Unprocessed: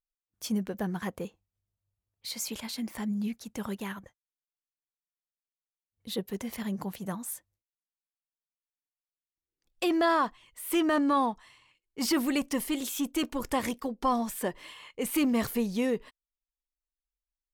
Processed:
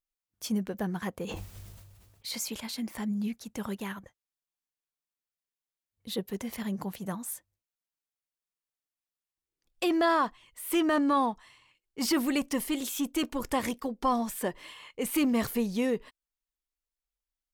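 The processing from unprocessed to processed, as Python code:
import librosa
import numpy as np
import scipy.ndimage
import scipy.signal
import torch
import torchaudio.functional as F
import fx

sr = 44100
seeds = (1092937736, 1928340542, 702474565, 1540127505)

y = fx.sustainer(x, sr, db_per_s=31.0, at=(1.26, 2.38), fade=0.02)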